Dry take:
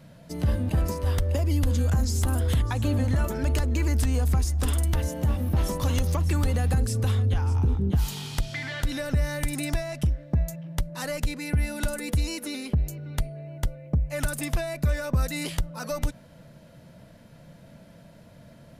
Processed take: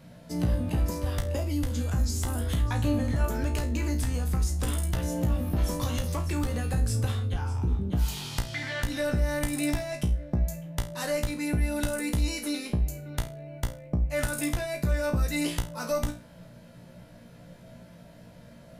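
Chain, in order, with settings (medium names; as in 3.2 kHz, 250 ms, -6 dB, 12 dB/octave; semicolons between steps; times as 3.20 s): compression, threshold -23 dBFS, peak gain reduction 5 dB; feedback comb 59 Hz, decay 0.32 s, harmonics all, mix 90%; trim +7.5 dB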